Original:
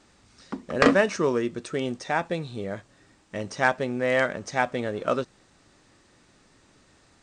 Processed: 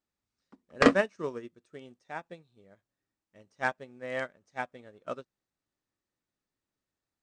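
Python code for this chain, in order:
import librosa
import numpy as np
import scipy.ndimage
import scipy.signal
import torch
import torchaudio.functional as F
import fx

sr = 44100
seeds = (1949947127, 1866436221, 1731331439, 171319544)

y = fx.upward_expand(x, sr, threshold_db=-35.0, expansion=2.5)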